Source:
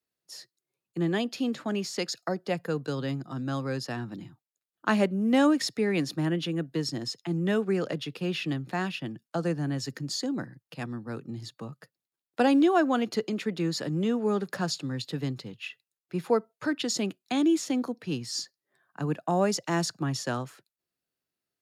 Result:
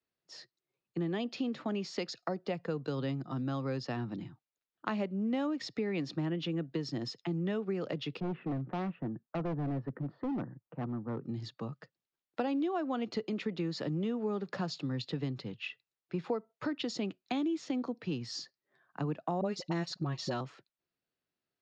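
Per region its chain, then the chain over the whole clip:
8.2–11.24 LPF 1400 Hz 24 dB/oct + hard clip -30.5 dBFS
19.41–20.41 bell 4100 Hz +8 dB 0.26 oct + comb 5.4 ms, depth 48% + dispersion highs, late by 41 ms, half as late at 570 Hz
whole clip: compressor 5:1, threshold -31 dBFS; dynamic EQ 1600 Hz, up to -6 dB, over -59 dBFS, Q 5.1; Bessel low-pass 3900 Hz, order 6

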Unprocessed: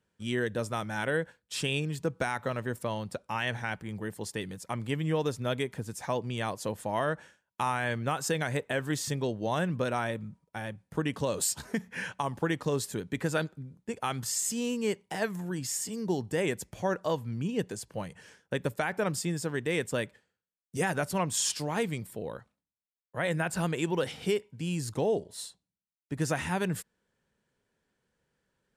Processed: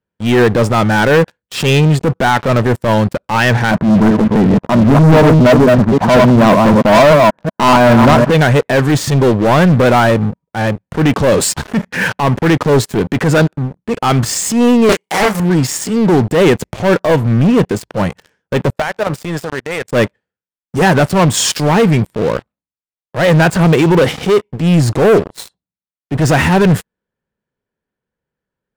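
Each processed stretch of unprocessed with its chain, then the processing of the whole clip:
3.71–8.3 reverse delay 0.189 s, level -6 dB + LPF 1500 Hz 24 dB/oct + small resonant body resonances 210/630/990 Hz, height 11 dB, ringing for 25 ms
14.89–15.4 RIAA curve recording + doubler 29 ms -6 dB + Doppler distortion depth 0.62 ms
18.7–19.93 resonant low shelf 430 Hz -6 dB, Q 1.5 + level quantiser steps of 14 dB
whole clip: LPF 1800 Hz 6 dB/oct; sample leveller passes 5; transient shaper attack -7 dB, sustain 0 dB; gain +7.5 dB

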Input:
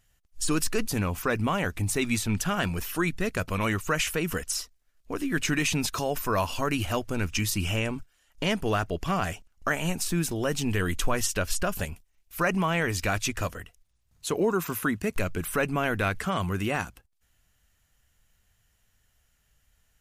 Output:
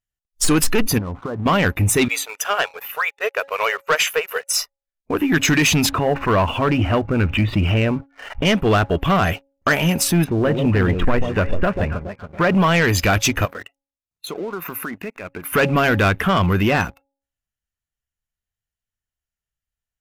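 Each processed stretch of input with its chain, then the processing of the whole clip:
0.98–1.46 inverse Chebyshev low-pass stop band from 5200 Hz, stop band 70 dB + compressor 10:1, threshold -35 dBFS
2.08–4.54 brick-wall FIR high-pass 400 Hz + upward expander, over -43 dBFS
5.89–8.45 air absorption 430 m + backwards sustainer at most 83 dB/s
10.24–12.55 tape spacing loss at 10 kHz 29 dB + echo with dull and thin repeats by turns 0.14 s, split 810 Hz, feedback 66%, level -7.5 dB
13.45–15.53 compressor 5:1, threshold -37 dBFS + low shelf 150 Hz -12 dB
whole clip: spectral noise reduction 23 dB; de-hum 275.9 Hz, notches 3; sample leveller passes 2; gain +5.5 dB

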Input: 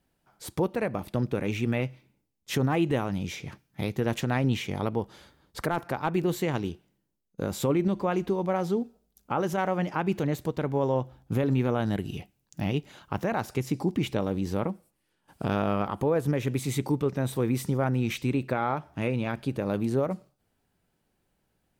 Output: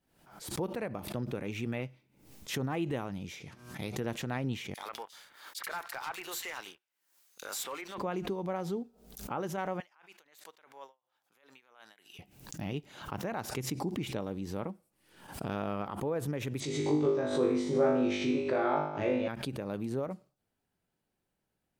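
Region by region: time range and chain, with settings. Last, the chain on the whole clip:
3.42–4 LPF 11000 Hz + high shelf 4000 Hz +7.5 dB + de-hum 121.5 Hz, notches 13
4.74–7.98 HPF 1400 Hz + sample leveller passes 3 + bands offset in time highs, lows 30 ms, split 2800 Hz
9.8–12.19 HPF 1200 Hz + dB-linear tremolo 2.9 Hz, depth 39 dB
16.6–19.28 speaker cabinet 120–6600 Hz, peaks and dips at 190 Hz -8 dB, 380 Hz +8 dB, 580 Hz +6 dB, 2600 Hz -3 dB + flutter echo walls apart 3.4 m, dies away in 0.77 s
whole clip: low shelf 83 Hz -5.5 dB; backwards sustainer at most 84 dB/s; gain -8 dB

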